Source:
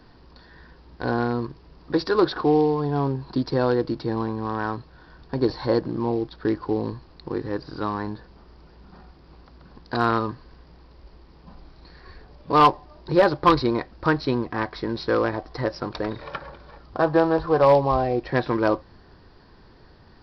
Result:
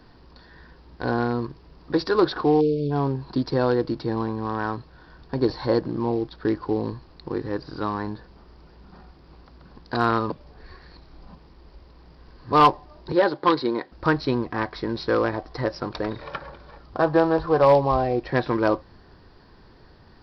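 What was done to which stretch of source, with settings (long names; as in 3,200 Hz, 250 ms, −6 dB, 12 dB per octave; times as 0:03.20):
0:02.61–0:02.91: time-frequency box erased 690–2,200 Hz
0:10.30–0:12.52: reverse
0:13.12–0:13.92: loudspeaker in its box 250–4,700 Hz, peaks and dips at 660 Hz −6 dB, 1,200 Hz −5 dB, 2,500 Hz −6 dB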